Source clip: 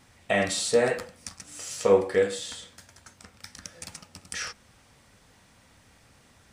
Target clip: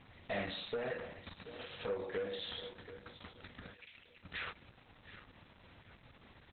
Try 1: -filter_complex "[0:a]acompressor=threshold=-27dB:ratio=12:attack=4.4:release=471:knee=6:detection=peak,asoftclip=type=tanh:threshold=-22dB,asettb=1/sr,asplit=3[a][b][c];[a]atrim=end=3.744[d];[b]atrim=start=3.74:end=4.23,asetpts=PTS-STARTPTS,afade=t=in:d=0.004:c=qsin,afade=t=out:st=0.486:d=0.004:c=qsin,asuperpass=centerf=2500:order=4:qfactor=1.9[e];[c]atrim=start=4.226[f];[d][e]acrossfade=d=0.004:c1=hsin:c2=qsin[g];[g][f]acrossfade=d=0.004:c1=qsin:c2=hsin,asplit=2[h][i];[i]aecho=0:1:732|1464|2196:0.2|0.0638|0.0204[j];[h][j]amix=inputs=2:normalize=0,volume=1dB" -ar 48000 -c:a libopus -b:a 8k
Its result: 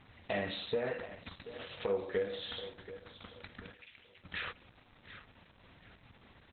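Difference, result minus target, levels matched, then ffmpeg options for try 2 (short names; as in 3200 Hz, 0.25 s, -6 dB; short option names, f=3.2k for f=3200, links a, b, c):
soft clip: distortion -12 dB
-filter_complex "[0:a]acompressor=threshold=-27dB:ratio=12:attack=4.4:release=471:knee=6:detection=peak,asoftclip=type=tanh:threshold=-32.5dB,asettb=1/sr,asplit=3[a][b][c];[a]atrim=end=3.744[d];[b]atrim=start=3.74:end=4.23,asetpts=PTS-STARTPTS,afade=t=in:d=0.004:c=qsin,afade=t=out:st=0.486:d=0.004:c=qsin,asuperpass=centerf=2500:order=4:qfactor=1.9[e];[c]atrim=start=4.226[f];[d][e]acrossfade=d=0.004:c1=hsin:c2=qsin[g];[g][f]acrossfade=d=0.004:c1=qsin:c2=hsin,asplit=2[h][i];[i]aecho=0:1:732|1464|2196:0.2|0.0638|0.0204[j];[h][j]amix=inputs=2:normalize=0,volume=1dB" -ar 48000 -c:a libopus -b:a 8k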